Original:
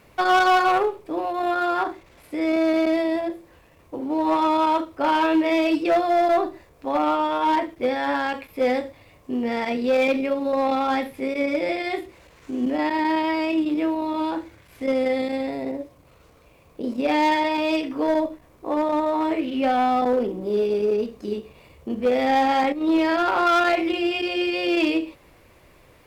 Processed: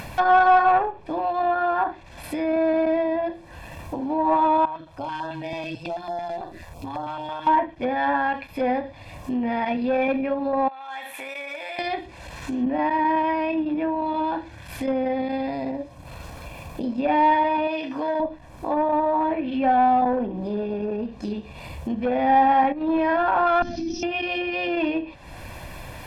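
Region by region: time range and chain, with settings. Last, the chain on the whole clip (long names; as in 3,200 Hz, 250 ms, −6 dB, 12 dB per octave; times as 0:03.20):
0:04.65–0:07.47: downward compressor 2 to 1, threshold −38 dBFS + amplitude modulation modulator 170 Hz, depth 45% + notch on a step sequencer 9.1 Hz 210–2,400 Hz
0:10.68–0:11.79: high-pass filter 950 Hz + parametric band 4,900 Hz −14 dB 0.29 octaves + downward compressor 4 to 1, threshold −41 dBFS
0:17.67–0:18.20: high-pass filter 65 Hz + low-shelf EQ 210 Hz −8 dB + downward compressor 2 to 1, threshold −24 dBFS
0:23.62–0:24.03: lower of the sound and its delayed copy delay 3 ms + drawn EQ curve 160 Hz 0 dB, 250 Hz +13 dB, 360 Hz −6 dB, 850 Hz −22 dB, 2,400 Hz −20 dB, 5,800 Hz +11 dB, 9,100 Hz −30 dB
whole clip: treble cut that deepens with the level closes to 1,800 Hz, closed at −19.5 dBFS; comb filter 1.2 ms, depth 62%; upward compression, threshold −24 dBFS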